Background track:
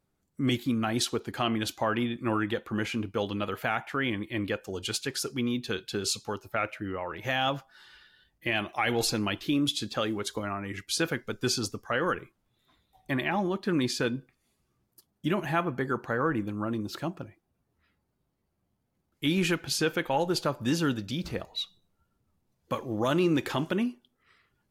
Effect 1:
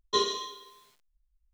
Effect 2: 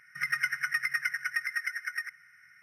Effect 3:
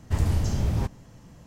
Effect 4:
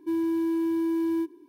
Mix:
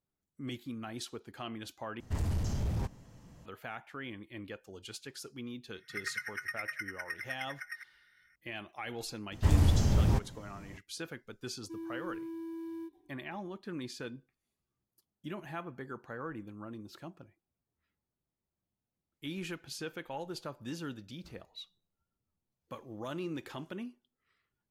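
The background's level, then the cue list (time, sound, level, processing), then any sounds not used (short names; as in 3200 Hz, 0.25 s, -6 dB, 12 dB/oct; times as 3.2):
background track -13.5 dB
2 replace with 3 -6 dB + soft clip -19.5 dBFS
5.74 add 2 -9 dB
9.32 add 3 -1 dB
11.63 add 4 -15.5 dB
not used: 1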